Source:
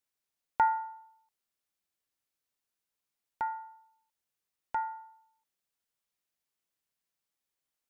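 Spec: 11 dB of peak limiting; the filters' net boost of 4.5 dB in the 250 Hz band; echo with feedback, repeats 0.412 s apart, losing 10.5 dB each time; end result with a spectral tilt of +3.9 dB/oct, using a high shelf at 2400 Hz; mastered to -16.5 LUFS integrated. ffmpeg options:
-af "equalizer=f=250:t=o:g=6,highshelf=f=2.4k:g=-6.5,alimiter=level_in=2dB:limit=-24dB:level=0:latency=1,volume=-2dB,aecho=1:1:412|824|1236:0.299|0.0896|0.0269,volume=23.5dB"

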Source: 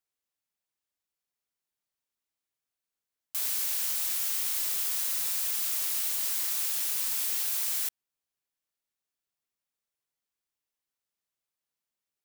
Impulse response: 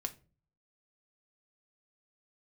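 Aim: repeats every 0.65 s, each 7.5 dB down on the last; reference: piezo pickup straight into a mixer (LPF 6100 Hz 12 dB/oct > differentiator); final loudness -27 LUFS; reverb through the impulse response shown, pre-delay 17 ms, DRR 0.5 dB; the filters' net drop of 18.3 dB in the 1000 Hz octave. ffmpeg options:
-filter_complex "[0:a]equalizer=f=1k:t=o:g=-3,aecho=1:1:650|1300|1950|2600|3250:0.422|0.177|0.0744|0.0312|0.0131,asplit=2[a][b];[1:a]atrim=start_sample=2205,adelay=17[c];[b][c]afir=irnorm=-1:irlink=0,volume=0dB[d];[a][d]amix=inputs=2:normalize=0,lowpass=6.1k,aderivative,volume=9dB"

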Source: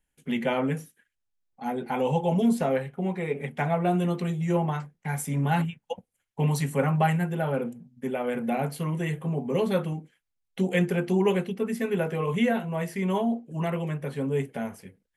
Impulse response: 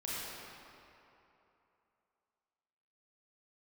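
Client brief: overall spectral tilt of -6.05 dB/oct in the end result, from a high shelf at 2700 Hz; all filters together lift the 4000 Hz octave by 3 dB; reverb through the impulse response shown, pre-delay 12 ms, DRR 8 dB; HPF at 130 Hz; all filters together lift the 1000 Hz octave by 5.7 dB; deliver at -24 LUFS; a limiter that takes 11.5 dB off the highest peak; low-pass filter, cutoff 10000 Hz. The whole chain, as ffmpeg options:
-filter_complex "[0:a]highpass=130,lowpass=10k,equalizer=f=1k:t=o:g=8,highshelf=f=2.7k:g=-4.5,equalizer=f=4k:t=o:g=7.5,alimiter=limit=-18.5dB:level=0:latency=1,asplit=2[a][b];[1:a]atrim=start_sample=2205,adelay=12[c];[b][c]afir=irnorm=-1:irlink=0,volume=-11.5dB[d];[a][d]amix=inputs=2:normalize=0,volume=4.5dB"

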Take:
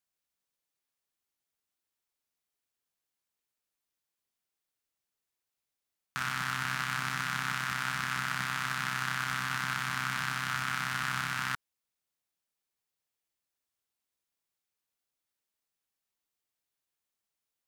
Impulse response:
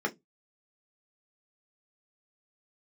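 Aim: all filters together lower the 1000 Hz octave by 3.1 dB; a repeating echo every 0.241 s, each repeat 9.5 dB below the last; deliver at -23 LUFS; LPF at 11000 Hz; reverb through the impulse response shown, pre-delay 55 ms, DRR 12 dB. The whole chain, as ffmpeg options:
-filter_complex "[0:a]lowpass=11k,equalizer=f=1k:t=o:g=-4.5,aecho=1:1:241|482|723|964:0.335|0.111|0.0365|0.012,asplit=2[a][b];[1:a]atrim=start_sample=2205,adelay=55[c];[b][c]afir=irnorm=-1:irlink=0,volume=-20dB[d];[a][d]amix=inputs=2:normalize=0,volume=10dB"

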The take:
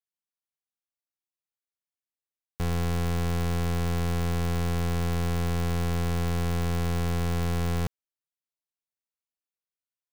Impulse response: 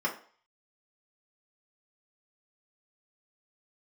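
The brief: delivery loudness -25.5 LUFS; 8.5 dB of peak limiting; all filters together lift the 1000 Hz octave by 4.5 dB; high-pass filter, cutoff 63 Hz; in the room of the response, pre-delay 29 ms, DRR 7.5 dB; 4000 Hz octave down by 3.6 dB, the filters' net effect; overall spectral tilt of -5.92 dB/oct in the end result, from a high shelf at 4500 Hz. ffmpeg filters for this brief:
-filter_complex "[0:a]highpass=63,equalizer=f=1k:t=o:g=6,equalizer=f=4k:t=o:g=-8,highshelf=f=4.5k:g=5,alimiter=level_in=1.5dB:limit=-24dB:level=0:latency=1,volume=-1.5dB,asplit=2[a][b];[1:a]atrim=start_sample=2205,adelay=29[c];[b][c]afir=irnorm=-1:irlink=0,volume=-16dB[d];[a][d]amix=inputs=2:normalize=0,volume=10.5dB"

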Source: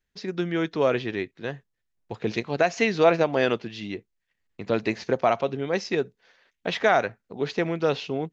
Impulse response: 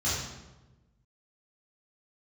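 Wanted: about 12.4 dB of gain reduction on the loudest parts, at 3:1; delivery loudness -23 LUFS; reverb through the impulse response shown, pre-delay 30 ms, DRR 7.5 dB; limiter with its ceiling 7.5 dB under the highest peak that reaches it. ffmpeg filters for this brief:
-filter_complex "[0:a]acompressor=threshold=-31dB:ratio=3,alimiter=limit=-22.5dB:level=0:latency=1,asplit=2[a][b];[1:a]atrim=start_sample=2205,adelay=30[c];[b][c]afir=irnorm=-1:irlink=0,volume=-17dB[d];[a][d]amix=inputs=2:normalize=0,volume=12dB"

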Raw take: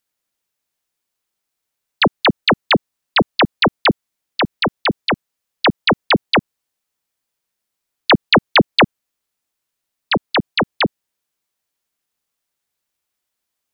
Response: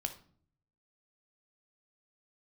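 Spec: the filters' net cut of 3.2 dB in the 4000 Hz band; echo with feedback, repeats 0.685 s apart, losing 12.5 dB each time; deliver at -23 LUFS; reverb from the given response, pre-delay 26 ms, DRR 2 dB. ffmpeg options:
-filter_complex "[0:a]equalizer=f=4k:t=o:g=-4,aecho=1:1:685|1370|2055:0.237|0.0569|0.0137,asplit=2[a][b];[1:a]atrim=start_sample=2205,adelay=26[c];[b][c]afir=irnorm=-1:irlink=0,volume=-2dB[d];[a][d]amix=inputs=2:normalize=0,volume=-7dB"

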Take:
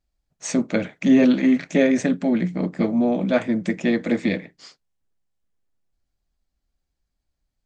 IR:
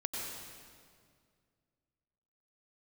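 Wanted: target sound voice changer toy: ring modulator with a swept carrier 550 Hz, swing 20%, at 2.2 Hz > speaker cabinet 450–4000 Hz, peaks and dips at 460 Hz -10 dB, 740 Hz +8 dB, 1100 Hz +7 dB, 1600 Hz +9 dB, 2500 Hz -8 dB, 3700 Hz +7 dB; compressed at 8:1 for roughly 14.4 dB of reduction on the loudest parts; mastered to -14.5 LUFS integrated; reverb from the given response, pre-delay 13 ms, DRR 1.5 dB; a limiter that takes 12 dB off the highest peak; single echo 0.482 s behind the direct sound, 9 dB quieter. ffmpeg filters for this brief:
-filter_complex "[0:a]acompressor=threshold=-26dB:ratio=8,alimiter=level_in=2dB:limit=-24dB:level=0:latency=1,volume=-2dB,aecho=1:1:482:0.355,asplit=2[a][b];[1:a]atrim=start_sample=2205,adelay=13[c];[b][c]afir=irnorm=-1:irlink=0,volume=-4dB[d];[a][d]amix=inputs=2:normalize=0,aeval=exprs='val(0)*sin(2*PI*550*n/s+550*0.2/2.2*sin(2*PI*2.2*n/s))':c=same,highpass=450,equalizer=f=460:t=q:w=4:g=-10,equalizer=f=740:t=q:w=4:g=8,equalizer=f=1.1k:t=q:w=4:g=7,equalizer=f=1.6k:t=q:w=4:g=9,equalizer=f=2.5k:t=q:w=4:g=-8,equalizer=f=3.7k:t=q:w=4:g=7,lowpass=f=4k:w=0.5412,lowpass=f=4k:w=1.3066,volume=18dB"

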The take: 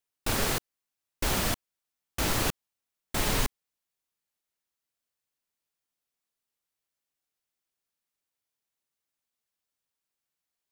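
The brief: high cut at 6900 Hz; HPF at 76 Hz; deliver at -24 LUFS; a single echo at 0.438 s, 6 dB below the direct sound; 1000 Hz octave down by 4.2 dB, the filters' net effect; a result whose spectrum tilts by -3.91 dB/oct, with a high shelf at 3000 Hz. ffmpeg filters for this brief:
-af "highpass=76,lowpass=6.9k,equalizer=f=1k:t=o:g=-5,highshelf=f=3k:g=-4,aecho=1:1:438:0.501,volume=10.5dB"

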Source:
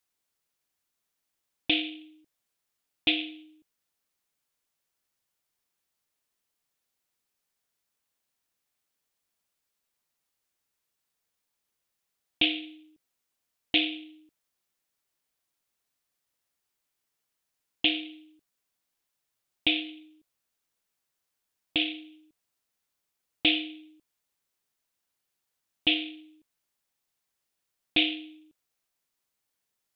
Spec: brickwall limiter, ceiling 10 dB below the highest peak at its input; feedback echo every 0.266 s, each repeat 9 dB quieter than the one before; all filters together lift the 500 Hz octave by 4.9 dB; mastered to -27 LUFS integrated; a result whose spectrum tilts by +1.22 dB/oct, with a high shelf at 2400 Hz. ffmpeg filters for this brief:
-af "equalizer=f=500:t=o:g=7,highshelf=f=2.4k:g=7,alimiter=limit=-14dB:level=0:latency=1,aecho=1:1:266|532|798|1064:0.355|0.124|0.0435|0.0152,volume=3.5dB"

